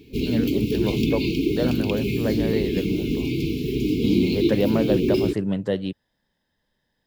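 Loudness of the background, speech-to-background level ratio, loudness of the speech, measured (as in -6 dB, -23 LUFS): -23.5 LUFS, -3.5 dB, -27.0 LUFS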